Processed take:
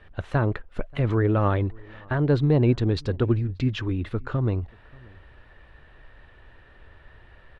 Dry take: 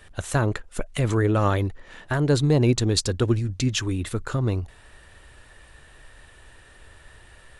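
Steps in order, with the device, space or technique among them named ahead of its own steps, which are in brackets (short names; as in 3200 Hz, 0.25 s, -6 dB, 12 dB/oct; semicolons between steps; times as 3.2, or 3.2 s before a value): shout across a valley (air absorption 350 m; outdoor echo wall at 100 m, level -26 dB)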